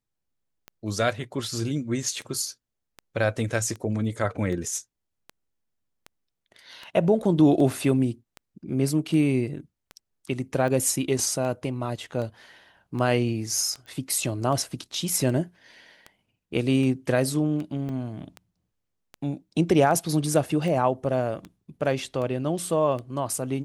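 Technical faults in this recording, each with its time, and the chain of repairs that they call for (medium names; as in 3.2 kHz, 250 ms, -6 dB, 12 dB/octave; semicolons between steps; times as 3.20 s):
tick 78 rpm -23 dBFS
13.86 s: pop -33 dBFS
17.89 s: dropout 2.7 ms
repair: de-click; interpolate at 17.89 s, 2.7 ms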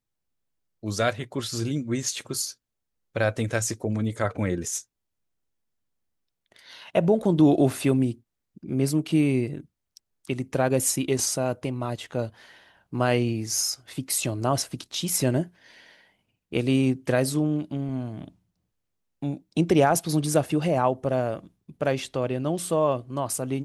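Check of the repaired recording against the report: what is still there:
nothing left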